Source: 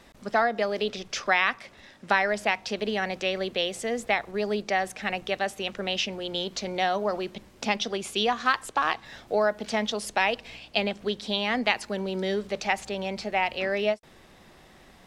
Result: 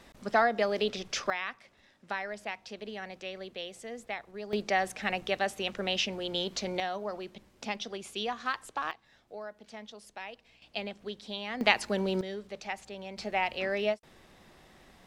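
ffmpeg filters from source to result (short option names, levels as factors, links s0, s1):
-af "asetnsamples=n=441:p=0,asendcmd='1.3 volume volume -12.5dB;4.53 volume volume -2dB;6.8 volume volume -9dB;8.91 volume volume -18.5dB;10.62 volume volume -10.5dB;11.61 volume volume 0.5dB;12.21 volume volume -11dB;13.18 volume volume -4dB',volume=0.841"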